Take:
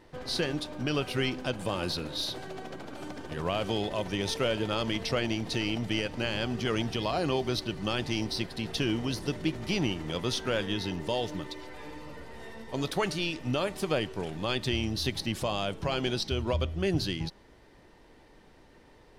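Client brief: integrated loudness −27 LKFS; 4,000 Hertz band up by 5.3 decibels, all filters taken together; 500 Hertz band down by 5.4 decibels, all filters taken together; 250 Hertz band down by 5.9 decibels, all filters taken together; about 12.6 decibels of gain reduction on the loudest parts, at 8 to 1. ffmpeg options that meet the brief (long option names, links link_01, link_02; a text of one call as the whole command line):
ffmpeg -i in.wav -af "equalizer=frequency=250:width_type=o:gain=-6.5,equalizer=frequency=500:width_type=o:gain=-5,equalizer=frequency=4000:width_type=o:gain=7,acompressor=threshold=-37dB:ratio=8,volume=13.5dB" out.wav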